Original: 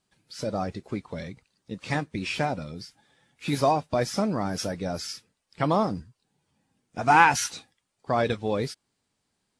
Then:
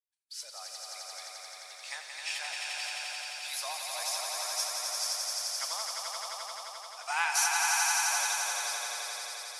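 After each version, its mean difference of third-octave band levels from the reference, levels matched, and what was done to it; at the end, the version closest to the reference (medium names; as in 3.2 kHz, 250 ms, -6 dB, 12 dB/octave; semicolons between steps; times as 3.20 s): 20.0 dB: expander -53 dBFS; high-pass 670 Hz 24 dB/octave; differentiator; on a send: echo with a slow build-up 87 ms, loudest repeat 5, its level -4 dB; on the sum: trim +2 dB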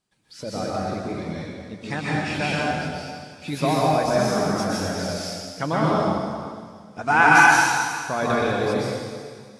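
9.5 dB: on a send: feedback echo behind a high-pass 361 ms, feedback 62%, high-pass 3.9 kHz, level -20.5 dB; on the sum: dynamic bell 1.5 kHz, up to +7 dB, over -48 dBFS, Q 6.2; hum notches 60/120 Hz; plate-style reverb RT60 1.9 s, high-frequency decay 1×, pre-delay 110 ms, DRR -6.5 dB; trim -2.5 dB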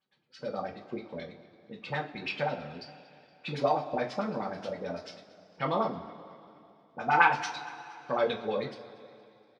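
7.0 dB: high-pass 270 Hz 6 dB/octave; LFO low-pass sine 9.3 Hz 370–4100 Hz; on a send: feedback delay 234 ms, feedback 54%, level -21 dB; on the sum: two-slope reverb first 0.25 s, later 2.9 s, from -21 dB, DRR -1 dB; trim -9 dB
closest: third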